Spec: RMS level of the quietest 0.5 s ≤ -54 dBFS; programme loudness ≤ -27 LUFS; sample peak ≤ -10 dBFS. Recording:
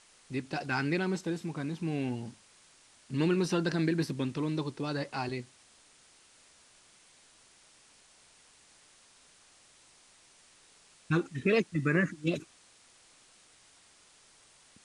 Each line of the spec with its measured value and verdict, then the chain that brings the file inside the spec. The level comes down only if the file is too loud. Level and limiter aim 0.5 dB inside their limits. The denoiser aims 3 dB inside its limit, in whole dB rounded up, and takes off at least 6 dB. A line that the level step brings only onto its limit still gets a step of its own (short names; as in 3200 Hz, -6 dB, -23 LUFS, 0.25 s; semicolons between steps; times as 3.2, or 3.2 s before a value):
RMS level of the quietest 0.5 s -61 dBFS: OK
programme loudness -32.0 LUFS: OK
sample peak -15.0 dBFS: OK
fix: none